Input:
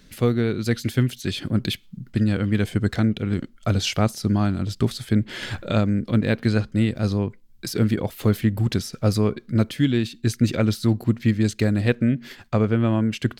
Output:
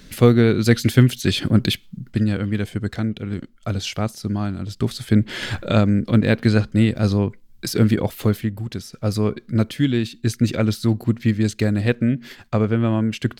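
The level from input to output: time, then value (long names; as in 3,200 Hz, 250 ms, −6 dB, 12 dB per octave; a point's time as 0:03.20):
0:01.44 +7 dB
0:02.76 −3 dB
0:04.66 −3 dB
0:05.15 +4 dB
0:08.14 +4 dB
0:08.66 −7.5 dB
0:09.29 +1 dB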